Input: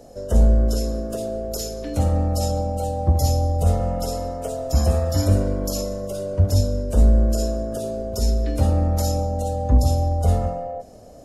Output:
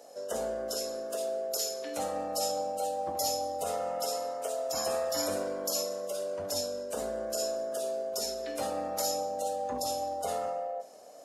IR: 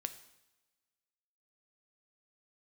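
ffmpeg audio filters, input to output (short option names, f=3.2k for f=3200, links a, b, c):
-filter_complex "[0:a]highpass=620[a];[1:a]atrim=start_sample=2205,atrim=end_sample=3528[b];[a][b]afir=irnorm=-1:irlink=0"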